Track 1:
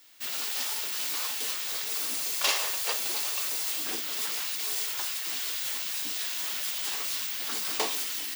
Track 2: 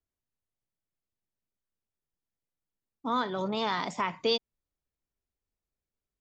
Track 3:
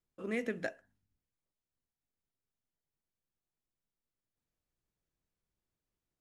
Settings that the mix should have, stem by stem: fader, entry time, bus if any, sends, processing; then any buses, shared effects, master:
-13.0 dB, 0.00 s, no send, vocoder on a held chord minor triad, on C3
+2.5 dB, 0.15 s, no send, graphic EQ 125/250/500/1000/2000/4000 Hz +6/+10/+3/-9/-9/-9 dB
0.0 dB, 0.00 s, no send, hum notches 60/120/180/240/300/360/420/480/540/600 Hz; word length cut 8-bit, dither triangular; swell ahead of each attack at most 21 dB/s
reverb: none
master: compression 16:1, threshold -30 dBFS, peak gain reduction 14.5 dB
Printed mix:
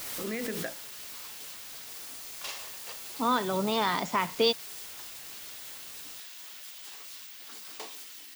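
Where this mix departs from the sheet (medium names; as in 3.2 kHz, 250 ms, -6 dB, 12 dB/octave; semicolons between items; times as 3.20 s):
stem 1: missing vocoder on a held chord minor triad, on C3; stem 2: missing graphic EQ 125/250/500/1000/2000/4000 Hz +6/+10/+3/-9/-9/-9 dB; master: missing compression 16:1, threshold -30 dBFS, peak gain reduction 14.5 dB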